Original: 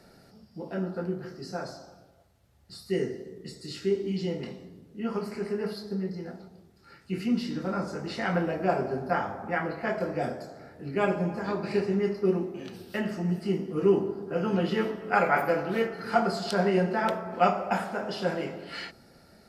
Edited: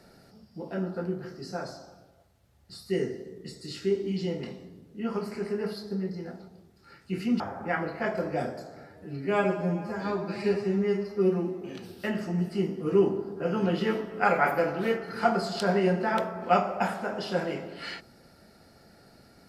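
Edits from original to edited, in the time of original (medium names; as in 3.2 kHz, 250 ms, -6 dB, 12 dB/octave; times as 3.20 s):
7.40–9.23 s: delete
10.67–12.52 s: stretch 1.5×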